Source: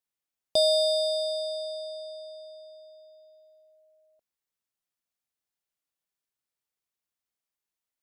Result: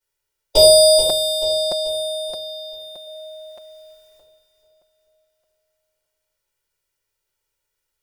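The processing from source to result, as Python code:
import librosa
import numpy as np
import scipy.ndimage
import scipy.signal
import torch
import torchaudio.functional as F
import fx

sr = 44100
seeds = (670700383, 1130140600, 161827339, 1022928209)

y = fx.spec_clip(x, sr, under_db=18)
y = fx.highpass(y, sr, hz=320.0, slope=24, at=(0.98, 3.06))
y = y + 0.89 * np.pad(y, (int(2.1 * sr / 1000.0), 0))[:len(y)]
y = fx.echo_feedback(y, sr, ms=434, feedback_pct=47, wet_db=-9.5)
y = fx.room_shoebox(y, sr, seeds[0], volume_m3=73.0, walls='mixed', distance_m=2.6)
y = fx.buffer_crackle(y, sr, first_s=0.47, period_s=0.62, block=256, kind='repeat')
y = y * 10.0 ** (-1.0 / 20.0)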